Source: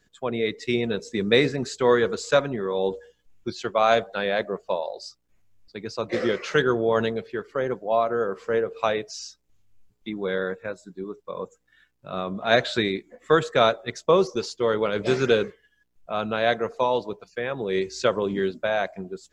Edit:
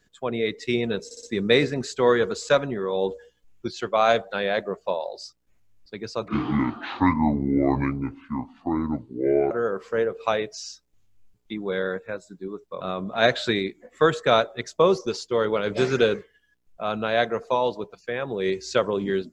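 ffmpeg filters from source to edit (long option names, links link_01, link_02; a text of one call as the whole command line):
ffmpeg -i in.wav -filter_complex "[0:a]asplit=7[link_01][link_02][link_03][link_04][link_05][link_06][link_07];[link_01]atrim=end=1.112[link_08];[link_02]atrim=start=1.048:end=1.112[link_09];[link_03]atrim=start=1.048:end=1.112[link_10];[link_04]atrim=start=1.048:end=6.104[link_11];[link_05]atrim=start=6.1:end=8.07,asetpts=PTS-STARTPTS,asetrate=26901,aresample=44100,atrim=end_sample=142421,asetpts=PTS-STARTPTS[link_12];[link_06]atrim=start=8.066:end=11.372[link_13];[link_07]atrim=start=12.098[link_14];[link_08][link_09]acrossfade=duration=0.004:curve1=hsin:curve2=hsin[link_15];[link_15][link_10]acrossfade=duration=0.004:curve1=hsin:curve2=hsin[link_16];[link_16][link_11]acrossfade=duration=0.004:curve1=hsin:curve2=hsin[link_17];[link_17][link_12]acrossfade=duration=0.004:curve1=hsin:curve2=hsin[link_18];[link_18][link_13]acrossfade=duration=0.004:curve1=hsin:curve2=hsin[link_19];[link_19][link_14]acrossfade=duration=0.004:curve1=hsin:curve2=hsin" out.wav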